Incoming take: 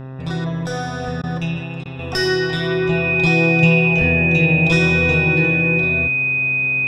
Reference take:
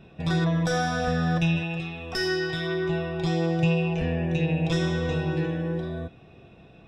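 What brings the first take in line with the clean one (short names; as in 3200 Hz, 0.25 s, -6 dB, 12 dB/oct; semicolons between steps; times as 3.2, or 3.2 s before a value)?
de-hum 131.6 Hz, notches 15; notch 2500 Hz, Q 30; interpolate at 1.22/1.84, 14 ms; gain 0 dB, from 1.99 s -8 dB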